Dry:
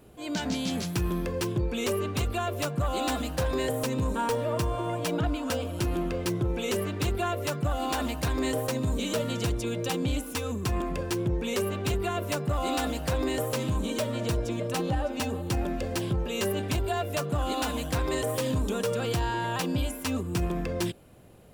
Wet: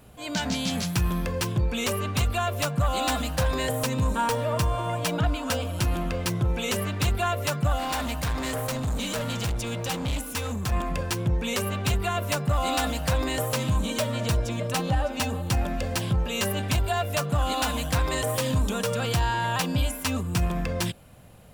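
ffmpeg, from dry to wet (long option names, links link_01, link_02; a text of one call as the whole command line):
ffmpeg -i in.wav -filter_complex "[0:a]asettb=1/sr,asplit=3[link_01][link_02][link_03];[link_01]atrim=end=7.784[link_04];[link_02]atrim=start=7.78:end=10.72,asetpts=PTS-STARTPTS,afade=type=in:duration=0.004:curve=qsin,afade=type=out:start_time=2.936:duration=0.004:curve=qsin,asoftclip=type=hard:threshold=-28.5dB[link_05];[link_03]atrim=start=10.716[link_06];[link_04][link_05]acrossfade=duration=0.004:curve1=hsin:curve2=qsin[link_07];[link_07][link_06]acrossfade=duration=0.004:curve1=qsin:curve2=hsin,equalizer=frequency=360:width_type=o:width=0.82:gain=-11,volume=5dB" out.wav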